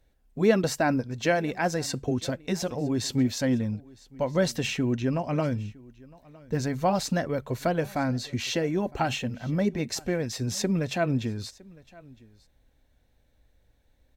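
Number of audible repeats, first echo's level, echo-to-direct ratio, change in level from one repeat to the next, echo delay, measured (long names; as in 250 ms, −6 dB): 1, −23.5 dB, −23.5 dB, repeats not evenly spaced, 960 ms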